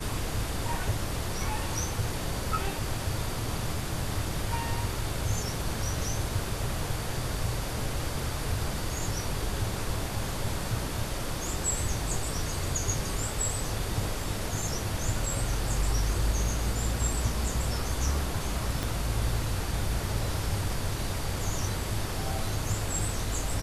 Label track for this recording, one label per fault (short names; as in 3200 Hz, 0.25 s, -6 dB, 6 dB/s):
18.830000	18.830000	pop